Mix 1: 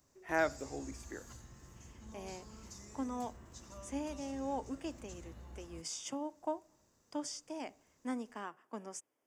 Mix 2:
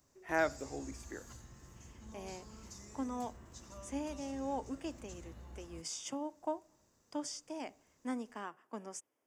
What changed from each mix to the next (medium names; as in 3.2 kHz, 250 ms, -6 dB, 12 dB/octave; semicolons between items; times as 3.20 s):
no change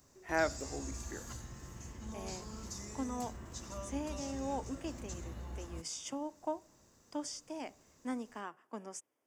background +7.0 dB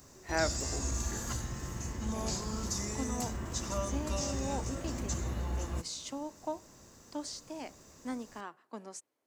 speech: remove Butterworth band-stop 4.1 kHz, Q 3.7; background +9.5 dB